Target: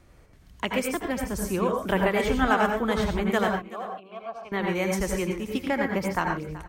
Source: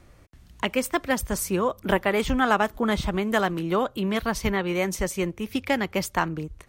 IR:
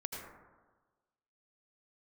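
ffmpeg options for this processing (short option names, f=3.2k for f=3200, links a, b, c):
-filter_complex "[0:a]asettb=1/sr,asplit=3[a][b][c];[a]atrim=end=0.944[d];[b]atrim=start=0.94:end=1.5,asetpts=PTS-STARTPTS,afade=t=in:d=0.004:c=qsin,afade=t=out:st=0.556:d=0.004:c=qsin,acrossover=split=450[e][f];[f]acompressor=threshold=-38dB:ratio=1.5[g];[e][g]amix=inputs=2:normalize=0[h];[c]atrim=start=1.496[i];[d][h]acrossfade=d=0.004:c1=hsin:c2=qsin[j];[j][i]acrossfade=d=0.004:c1=qsin:c2=hsin,asettb=1/sr,asplit=3[k][l][m];[k]atrim=end=3.484[n];[l]atrim=start=3.48:end=4.52,asetpts=PTS-STARTPTS,afade=t=in:d=0.004:c=qsin,afade=t=out:st=1.036:d=0.004:c=qsin,asplit=3[o][p][q];[o]bandpass=f=730:t=q:w=8,volume=0dB[r];[p]bandpass=f=1.09k:t=q:w=8,volume=-6dB[s];[q]bandpass=f=2.44k:t=q:w=8,volume=-9dB[t];[r][s][t]amix=inputs=3:normalize=0[u];[m]atrim=start=4.516[v];[n][u]acrossfade=d=0.004:c1=hsin:c2=qsin[w];[w][v]acrossfade=d=0.004:c1=qsin:c2=hsin,asettb=1/sr,asplit=3[x][y][z];[x]atrim=end=5.664[aa];[y]atrim=start=5.66:end=6.19,asetpts=PTS-STARTPTS,afade=t=in:d=0.004:c=qsin,afade=t=out:st=0.526:d=0.004:c=qsin,highshelf=f=2.2k:t=q:w=1.5:g=-6[ab];[z]atrim=start=6.186[ac];[aa][ab]acrossfade=d=0.004:c1=hsin:c2=qsin[ad];[ad][ac]acrossfade=d=0.004:c1=qsin:c2=hsin,aecho=1:1:379:0.126[ae];[1:a]atrim=start_sample=2205,atrim=end_sample=6174[af];[ae][af]afir=irnorm=-1:irlink=0"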